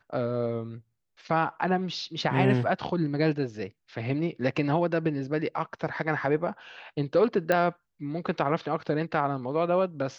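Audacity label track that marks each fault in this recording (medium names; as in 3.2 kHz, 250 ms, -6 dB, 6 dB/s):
7.520000	7.520000	pop -12 dBFS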